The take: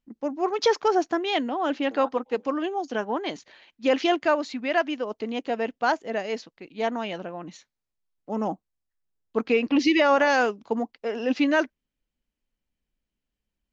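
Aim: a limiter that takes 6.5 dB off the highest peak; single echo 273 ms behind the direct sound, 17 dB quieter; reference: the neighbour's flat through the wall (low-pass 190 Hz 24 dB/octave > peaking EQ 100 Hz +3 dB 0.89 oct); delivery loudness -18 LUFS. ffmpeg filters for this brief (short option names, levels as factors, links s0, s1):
-af "alimiter=limit=0.15:level=0:latency=1,lowpass=f=190:w=0.5412,lowpass=f=190:w=1.3066,equalizer=f=100:t=o:w=0.89:g=3,aecho=1:1:273:0.141,volume=22.4"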